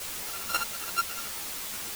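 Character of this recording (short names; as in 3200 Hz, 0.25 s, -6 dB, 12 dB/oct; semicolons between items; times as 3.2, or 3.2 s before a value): a buzz of ramps at a fixed pitch in blocks of 32 samples; chopped level 9.2 Hz, depth 60%, duty 15%; a quantiser's noise floor 6-bit, dither triangular; a shimmering, thickened sound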